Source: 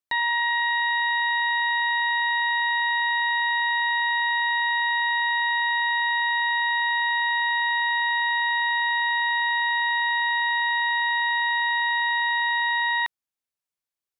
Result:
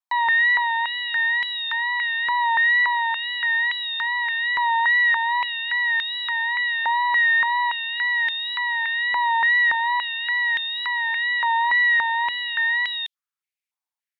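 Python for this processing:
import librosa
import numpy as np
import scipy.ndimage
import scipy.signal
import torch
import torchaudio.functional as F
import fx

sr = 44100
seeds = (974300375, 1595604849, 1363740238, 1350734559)

y = fx.wow_flutter(x, sr, seeds[0], rate_hz=2.1, depth_cents=52.0)
y = fx.filter_held_highpass(y, sr, hz=3.5, low_hz=870.0, high_hz=3300.0)
y = y * 10.0 ** (-4.0 / 20.0)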